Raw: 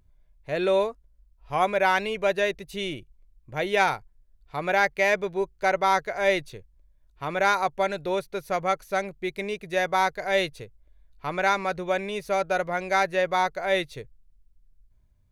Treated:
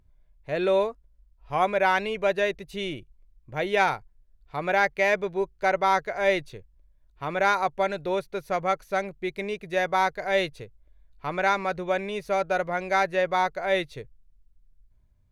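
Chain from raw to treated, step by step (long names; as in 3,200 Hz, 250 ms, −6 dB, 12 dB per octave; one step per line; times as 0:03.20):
high-shelf EQ 5,100 Hz −6.5 dB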